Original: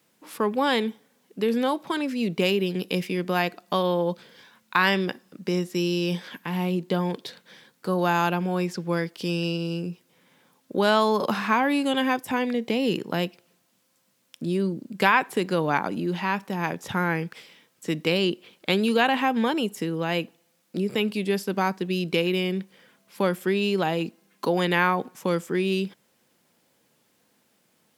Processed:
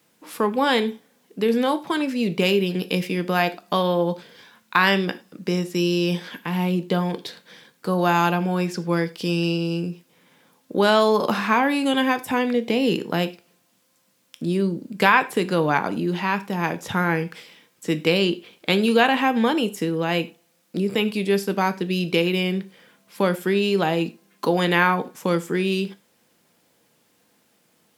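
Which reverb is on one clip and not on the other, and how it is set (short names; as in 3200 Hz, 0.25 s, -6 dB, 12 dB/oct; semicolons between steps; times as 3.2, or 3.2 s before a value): non-linear reverb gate 0.13 s falling, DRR 10.5 dB; gain +3 dB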